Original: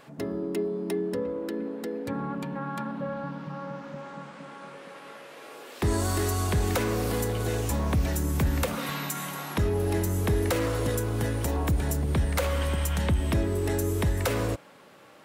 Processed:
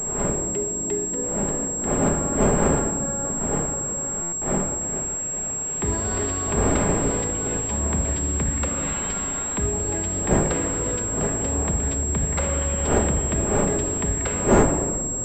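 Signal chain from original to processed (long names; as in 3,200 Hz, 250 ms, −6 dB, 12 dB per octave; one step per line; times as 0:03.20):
wind on the microphone 550 Hz −28 dBFS
0:04.26–0:04.81: noise gate with hold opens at −25 dBFS
rectangular room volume 2,400 cubic metres, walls mixed, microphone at 1.3 metres
buffer that repeats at 0:04.22, samples 512, times 8
switching amplifier with a slow clock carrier 7,600 Hz
level −1.5 dB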